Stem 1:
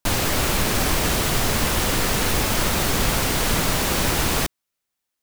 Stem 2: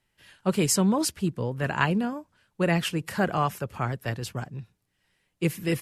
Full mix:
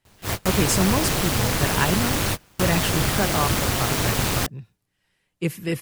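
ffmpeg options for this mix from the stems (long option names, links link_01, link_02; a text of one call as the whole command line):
ffmpeg -i stem1.wav -i stem2.wav -filter_complex "[0:a]aeval=exprs='val(0)*sin(2*PI*100*n/s)':channel_layout=same,volume=1dB[link_01];[1:a]volume=0.5dB,asplit=2[link_02][link_03];[link_03]apad=whole_len=230634[link_04];[link_01][link_04]sidechaingate=range=-32dB:threshold=-52dB:ratio=16:detection=peak[link_05];[link_05][link_02]amix=inputs=2:normalize=0" out.wav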